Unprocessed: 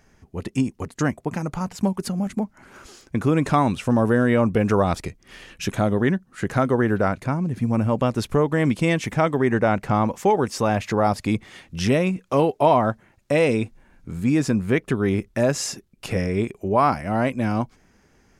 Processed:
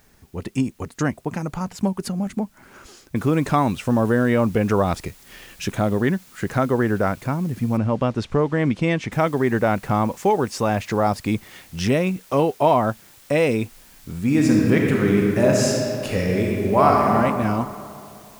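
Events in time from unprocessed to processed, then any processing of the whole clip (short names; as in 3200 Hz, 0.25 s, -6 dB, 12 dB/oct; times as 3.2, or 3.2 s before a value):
3.16 noise floor step -62 dB -50 dB
7.77–9.12 air absorption 94 m
14.23–17.13 reverb throw, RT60 2.6 s, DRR -1.5 dB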